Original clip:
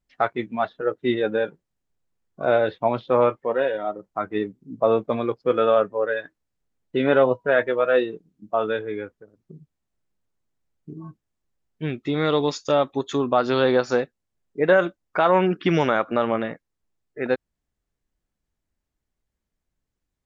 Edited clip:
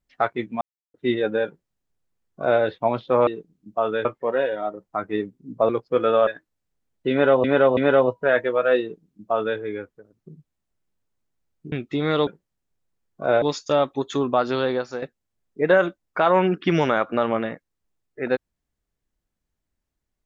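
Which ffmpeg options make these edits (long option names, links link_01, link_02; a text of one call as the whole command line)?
ffmpeg -i in.wav -filter_complex "[0:a]asplit=13[link_01][link_02][link_03][link_04][link_05][link_06][link_07][link_08][link_09][link_10][link_11][link_12][link_13];[link_01]atrim=end=0.61,asetpts=PTS-STARTPTS,afade=type=out:start_time=0.606:duration=0.004:curve=hsin[link_14];[link_02]atrim=start=0.61:end=0.94,asetpts=PTS-STARTPTS,volume=0[link_15];[link_03]atrim=start=0.94:end=3.272,asetpts=PTS-STARTPTS,afade=type=in:duration=0.004:curve=hsin[link_16];[link_04]atrim=start=8.028:end=8.812[link_17];[link_05]atrim=start=3.268:end=4.912[link_18];[link_06]atrim=start=5.228:end=5.812[link_19];[link_07]atrim=start=6.158:end=7.332[link_20];[link_08]atrim=start=6.998:end=7.332[link_21];[link_09]atrim=start=6.998:end=10.952[link_22];[link_10]atrim=start=11.858:end=12.412[link_23];[link_11]atrim=start=1.458:end=2.612[link_24];[link_12]atrim=start=12.408:end=14.01,asetpts=PTS-STARTPTS,afade=type=out:start_time=0.882:duration=0.72:silence=0.266073[link_25];[link_13]atrim=start=14.01,asetpts=PTS-STARTPTS,afade=type=in:duration=0.004:curve=hsin:silence=0.266073[link_26];[link_14][link_15][link_16]concat=n=3:v=0:a=1[link_27];[link_27][link_17]acrossfade=duration=0.004:curve1=hsin:curve2=hsin[link_28];[link_28][link_18]acrossfade=duration=0.004:curve1=hsin:curve2=hsin[link_29];[link_29][link_19]acrossfade=duration=0.004:curve1=hsin:curve2=hsin[link_30];[link_30][link_20]acrossfade=duration=0.004:curve1=hsin:curve2=hsin[link_31];[link_31][link_21]acrossfade=duration=0.004:curve1=hsin:curve2=hsin[link_32];[link_32][link_22]acrossfade=duration=0.004:curve1=hsin:curve2=hsin[link_33];[link_33][link_23]acrossfade=duration=0.004:curve1=hsin:curve2=hsin[link_34];[link_34][link_24]acrossfade=duration=0.004:curve1=hsin:curve2=hsin[link_35];[link_25][link_26]concat=n=2:v=0:a=1[link_36];[link_35][link_36]acrossfade=duration=0.004:curve1=hsin:curve2=hsin" out.wav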